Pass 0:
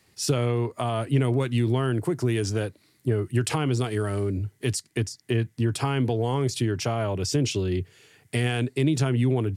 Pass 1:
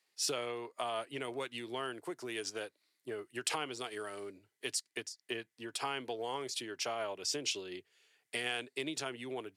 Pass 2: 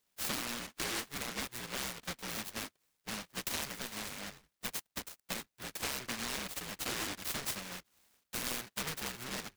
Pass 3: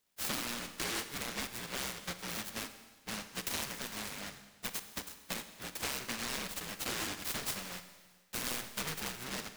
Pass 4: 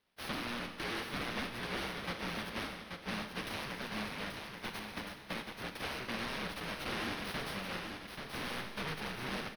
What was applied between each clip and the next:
HPF 490 Hz 12 dB/oct; bell 3600 Hz +4 dB 1.7 oct; upward expander 1.5:1, over -46 dBFS; gain -6 dB
cycle switcher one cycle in 2, inverted; dynamic EQ 9600 Hz, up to -7 dB, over -54 dBFS, Q 0.71; noise-modulated delay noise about 1600 Hz, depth 0.48 ms
reverb RT60 1.5 s, pre-delay 39 ms, DRR 10 dB
soft clip -36.5 dBFS, distortion -10 dB; running mean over 6 samples; feedback echo 0.832 s, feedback 24%, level -5.5 dB; gain +5 dB

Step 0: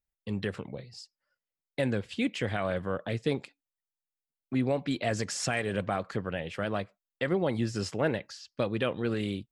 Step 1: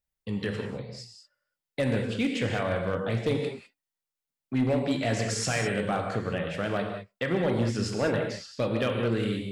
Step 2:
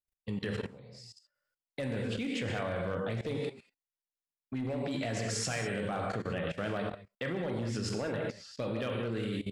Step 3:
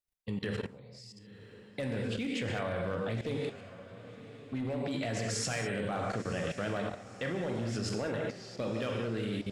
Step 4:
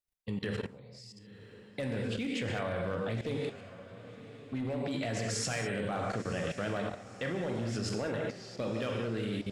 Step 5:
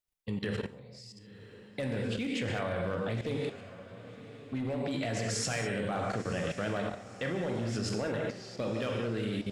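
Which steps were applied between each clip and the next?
non-linear reverb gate 0.23 s flat, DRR 2 dB; hard clip -20 dBFS, distortion -20 dB; gain +1 dB
level quantiser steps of 17 dB
diffused feedback echo 1.016 s, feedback 48%, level -15 dB
nothing audible
Schroeder reverb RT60 0.59 s, combs from 30 ms, DRR 17.5 dB; gain +1 dB

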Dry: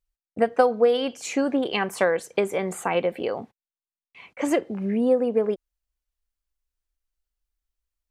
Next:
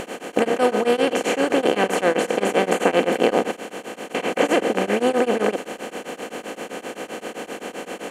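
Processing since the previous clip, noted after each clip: per-bin compression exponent 0.2; beating tremolo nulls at 7.7 Hz; gain -2 dB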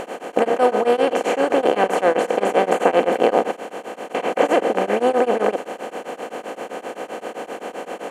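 bell 750 Hz +9.5 dB 2.1 oct; gain -5 dB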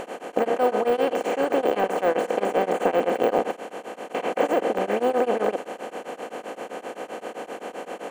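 de-esser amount 80%; gain -4 dB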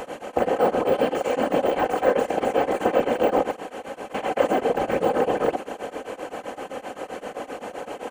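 whisperiser; comb 3.9 ms, depth 36%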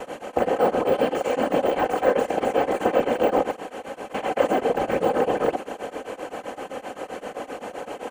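expander -39 dBFS

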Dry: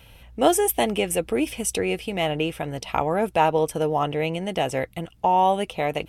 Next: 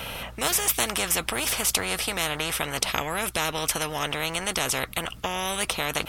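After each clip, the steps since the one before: thirty-one-band EQ 315 Hz -6 dB, 630 Hz +4 dB, 1250 Hz +8 dB; spectral compressor 4:1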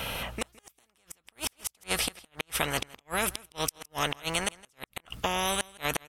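flipped gate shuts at -13 dBFS, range -42 dB; echo 0.164 s -22.5 dB

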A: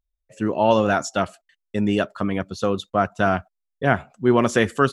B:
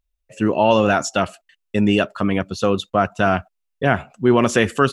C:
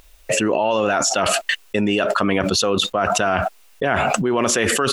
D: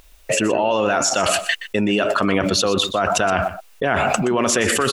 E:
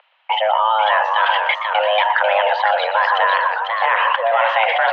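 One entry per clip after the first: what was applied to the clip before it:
bell 2700 Hz +6.5 dB 0.26 oct; in parallel at +2 dB: limiter -11.5 dBFS, peak gain reduction 9.5 dB; on the sum: gain -2.5 dB
tone controls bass -10 dB, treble -1 dB; fast leveller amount 100%; gain -5.5 dB
outdoor echo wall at 21 m, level -12 dB
mistuned SSB +320 Hz 210–2800 Hz; warbling echo 0.49 s, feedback 37%, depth 163 cents, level -5 dB; gain +2.5 dB

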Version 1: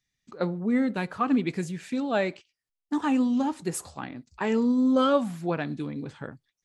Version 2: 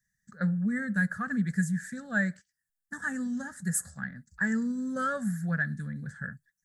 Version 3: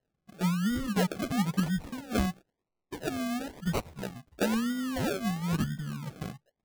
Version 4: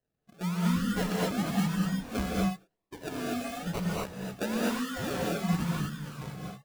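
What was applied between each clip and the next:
EQ curve 120 Hz 0 dB, 200 Hz +6 dB, 320 Hz -26 dB, 540 Hz -12 dB, 1000 Hz -20 dB, 1700 Hz +12 dB, 2500 Hz -26 dB, 7600 Hz +5 dB
decimation with a swept rate 37×, swing 60% 1 Hz
non-linear reverb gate 0.27 s rising, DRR -4.5 dB; gain -5 dB

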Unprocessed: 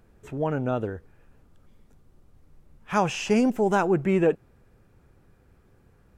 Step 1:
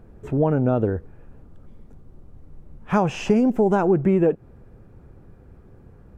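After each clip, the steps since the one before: tilt shelf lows +7.5 dB, about 1400 Hz; compressor 6:1, threshold -19 dBFS, peak gain reduction 8.5 dB; gain +4 dB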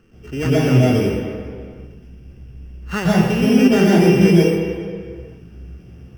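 sample sorter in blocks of 16 samples; reverb RT60 2.2 s, pre-delay 0.118 s, DRR -4 dB; gain -11 dB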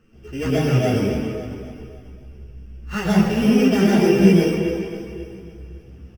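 on a send: feedback echo 0.273 s, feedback 48%, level -11 dB; on the sum: ensemble effect

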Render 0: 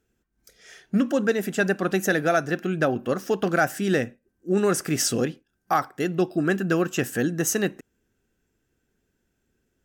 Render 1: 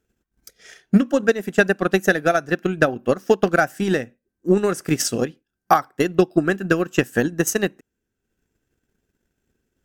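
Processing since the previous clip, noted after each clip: transient shaper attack +11 dB, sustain -6 dB; gain -1 dB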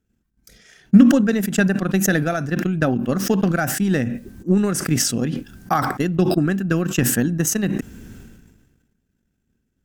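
resonant low shelf 300 Hz +7 dB, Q 1.5; sustainer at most 39 dB/s; gain -5.5 dB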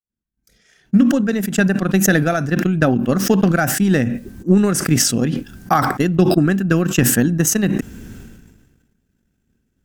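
opening faded in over 2.08 s; gain +4 dB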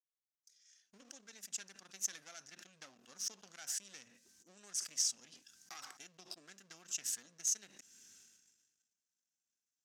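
compressor 2:1, threshold -25 dBFS, peak gain reduction 9.5 dB; one-sided clip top -26.5 dBFS; band-pass 6100 Hz, Q 2.7; gain -4 dB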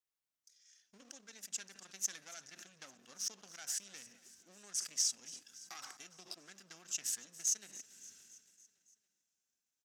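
in parallel at -9.5 dB: overloaded stage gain 27 dB; on the sum: feedback echo 0.282 s, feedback 60%, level -18 dB; gain -1.5 dB

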